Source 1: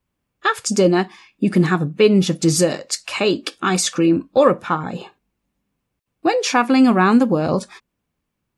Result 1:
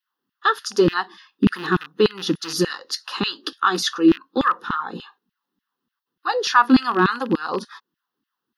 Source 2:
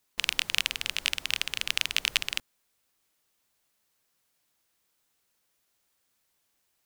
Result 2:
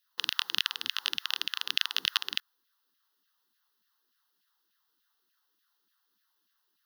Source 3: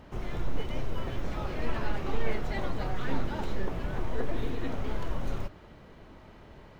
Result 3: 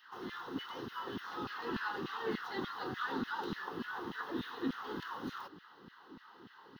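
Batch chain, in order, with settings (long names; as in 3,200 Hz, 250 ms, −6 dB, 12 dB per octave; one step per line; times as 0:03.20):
loose part that buzzes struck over −20 dBFS, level −19 dBFS
auto-filter high-pass saw down 3.4 Hz 210–2,500 Hz
phaser with its sweep stopped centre 2,300 Hz, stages 6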